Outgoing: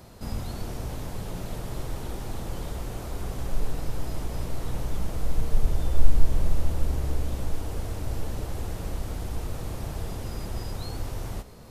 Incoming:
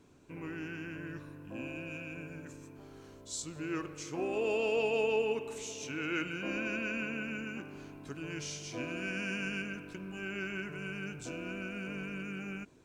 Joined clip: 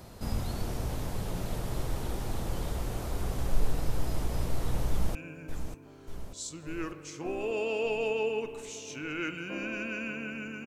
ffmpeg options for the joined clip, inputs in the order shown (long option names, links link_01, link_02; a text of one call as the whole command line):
ffmpeg -i cue0.wav -i cue1.wav -filter_complex "[0:a]apad=whole_dur=10.66,atrim=end=10.66,atrim=end=5.152[link_01];[1:a]atrim=start=2.078:end=7.59[link_02];[link_01][link_02]acrossfade=duration=0.004:curve1=hsin:curve2=hsin,asplit=2[link_03][link_04];[link_04]afade=type=in:start_time=4.89:duration=0.01,afade=type=out:start_time=5.15:duration=0.01,aecho=0:1:590|1180|1770|2360|2950|3540|4130|4720:0.375837|0.225502|0.135301|0.0811809|0.0487085|0.0292251|0.0175351|0.010521[link_05];[link_03][link_05]amix=inputs=2:normalize=0" out.wav